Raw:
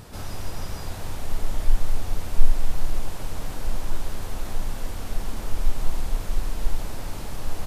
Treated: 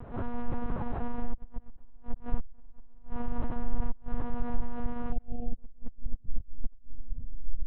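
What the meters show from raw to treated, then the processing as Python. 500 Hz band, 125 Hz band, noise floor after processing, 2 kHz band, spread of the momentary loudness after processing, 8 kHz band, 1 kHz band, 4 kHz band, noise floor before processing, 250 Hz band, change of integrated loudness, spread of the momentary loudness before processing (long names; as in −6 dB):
−4.0 dB, −8.0 dB, −48 dBFS, −10.5 dB, 11 LU, can't be measured, −3.0 dB, below −20 dB, −34 dBFS, +2.0 dB, −6.5 dB, 6 LU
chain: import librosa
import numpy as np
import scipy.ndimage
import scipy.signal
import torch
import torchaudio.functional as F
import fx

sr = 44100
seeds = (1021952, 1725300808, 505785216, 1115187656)

y = fx.filter_sweep_lowpass(x, sr, from_hz=1100.0, to_hz=110.0, start_s=5.09, end_s=6.42, q=0.92)
y = fx.gate_flip(y, sr, shuts_db=-12.0, range_db=-27)
y = fx.lpc_monotone(y, sr, seeds[0], pitch_hz=240.0, order=8)
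y = fx.spec_repair(y, sr, seeds[1], start_s=5.15, length_s=0.37, low_hz=840.0, high_hz=2400.0, source='after')
y = y * librosa.db_to_amplitude(1.0)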